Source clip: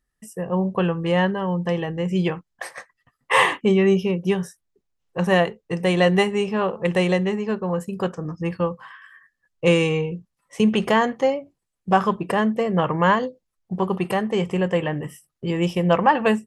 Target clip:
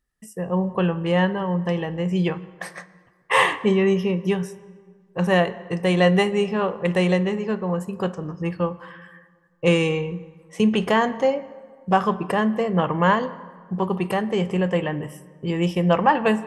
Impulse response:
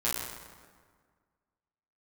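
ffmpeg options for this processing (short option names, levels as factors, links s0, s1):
-filter_complex "[0:a]asplit=2[s0][s1];[1:a]atrim=start_sample=2205,lowpass=5900[s2];[s1][s2]afir=irnorm=-1:irlink=0,volume=0.0944[s3];[s0][s3]amix=inputs=2:normalize=0,volume=0.841"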